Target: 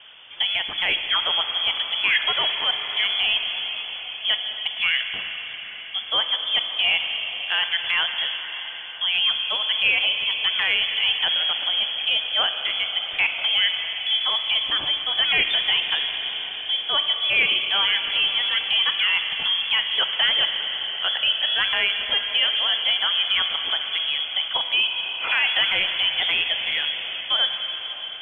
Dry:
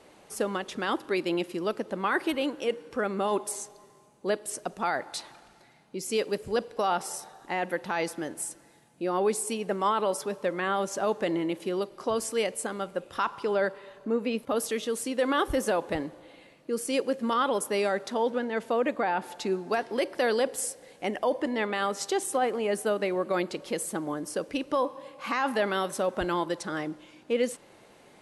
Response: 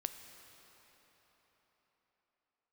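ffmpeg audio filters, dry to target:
-filter_complex "[0:a]lowpass=frequency=3100:width_type=q:width=0.5098,lowpass=frequency=3100:width_type=q:width=0.6013,lowpass=frequency=3100:width_type=q:width=0.9,lowpass=frequency=3100:width_type=q:width=2.563,afreqshift=-3600[link_01];[1:a]atrim=start_sample=2205,asetrate=26460,aresample=44100[link_02];[link_01][link_02]afir=irnorm=-1:irlink=0,acrossover=split=2500[link_03][link_04];[link_04]acompressor=threshold=-32dB:ratio=4:attack=1:release=60[link_05];[link_03][link_05]amix=inputs=2:normalize=0,volume=8dB"

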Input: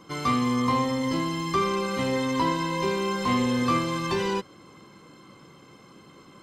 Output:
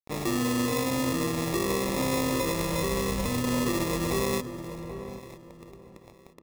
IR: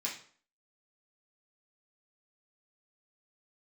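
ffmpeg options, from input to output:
-filter_complex "[0:a]acrusher=samples=29:mix=1:aa=0.000001,asettb=1/sr,asplit=3[link_01][link_02][link_03];[link_01]atrim=end=2.304[link_04];[link_02]atrim=start=2.3:end=3.43,asetpts=PTS-STARTPTS,afade=type=in:duration=0.004:curve=qsin,afade=type=out:start_time=1.126:duration=0.004:curve=qsin,asubboost=boost=8:cutoff=170[link_05];[link_03]atrim=start=3.426[link_06];[link_04][link_05]acrossfade=duration=0.004:curve1=hsin:curve2=qsin[link_07];[link_07][link_06]acrossfade=duration=0.004:curve1=qsin:curve2=hsin,acrusher=bits=6:mix=0:aa=0.000001,bandreject=frequency=4600:width=21,asplit=2[link_08][link_09];[link_09]aecho=0:1:962|1924:0.0891|0.0285[link_10];[link_08][link_10]amix=inputs=2:normalize=0,alimiter=limit=-20.5dB:level=0:latency=1:release=55,asplit=2[link_11][link_12];[link_12]adelay=785,lowpass=frequency=1000:poles=1,volume=-9dB,asplit=2[link_13][link_14];[link_14]adelay=785,lowpass=frequency=1000:poles=1,volume=0.27,asplit=2[link_15][link_16];[link_16]adelay=785,lowpass=frequency=1000:poles=1,volume=0.27[link_17];[link_13][link_15][link_17]amix=inputs=3:normalize=0[link_18];[link_11][link_18]amix=inputs=2:normalize=0,adynamicequalizer=threshold=0.00398:dfrequency=4100:dqfactor=0.7:tfrequency=4100:tqfactor=0.7:attack=5:release=100:ratio=0.375:range=2.5:mode=boostabove:tftype=highshelf"

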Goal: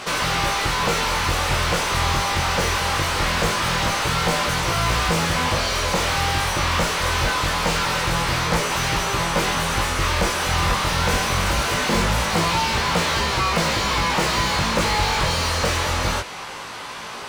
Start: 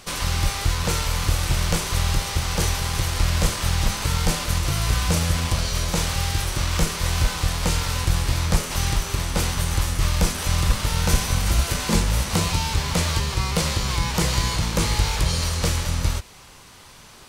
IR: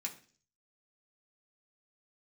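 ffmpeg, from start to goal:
-filter_complex "[0:a]flanger=delay=17:depth=5.7:speed=0.23,asplit=2[link_01][link_02];[link_02]highpass=frequency=720:poles=1,volume=29dB,asoftclip=type=tanh:threshold=-8.5dB[link_03];[link_01][link_03]amix=inputs=2:normalize=0,lowpass=frequency=1600:poles=1,volume=-6dB"

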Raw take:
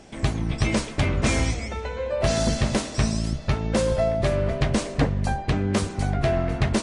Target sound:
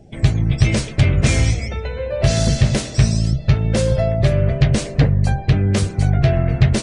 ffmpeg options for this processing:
ffmpeg -i in.wav -af "acontrast=83,afftdn=noise_reduction=18:noise_floor=-38,equalizer=frequency=125:width_type=o:width=1:gain=8,equalizer=frequency=250:width_type=o:width=1:gain=-6,equalizer=frequency=1000:width_type=o:width=1:gain=-9,volume=-1dB" out.wav

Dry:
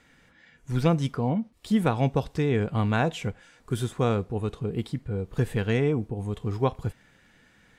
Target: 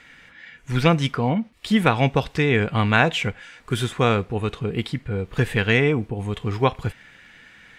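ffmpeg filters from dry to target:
ffmpeg -i in.wav -af "equalizer=frequency=2300:width_type=o:width=1.9:gain=11,volume=3.5dB" out.wav

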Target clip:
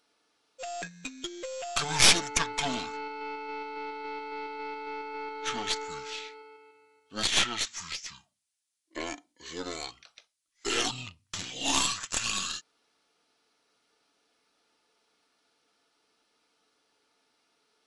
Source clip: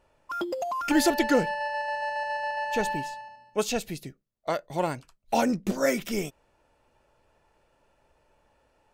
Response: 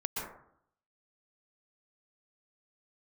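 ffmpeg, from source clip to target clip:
-af "aderivative,aeval=exprs='0.158*(cos(1*acos(clip(val(0)/0.158,-1,1)))-cos(1*PI/2))+0.0562*(cos(4*acos(clip(val(0)/0.158,-1,1)))-cos(4*PI/2))':channel_layout=same,asetrate=22050,aresample=44100,volume=8.5dB"

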